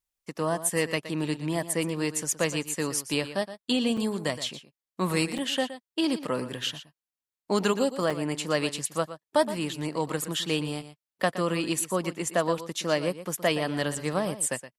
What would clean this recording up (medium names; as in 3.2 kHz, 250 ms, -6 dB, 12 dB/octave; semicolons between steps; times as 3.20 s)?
clip repair -10 dBFS; interpolate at 3.97/5.38/7.11/8.10 s, 5.3 ms; inverse comb 119 ms -13 dB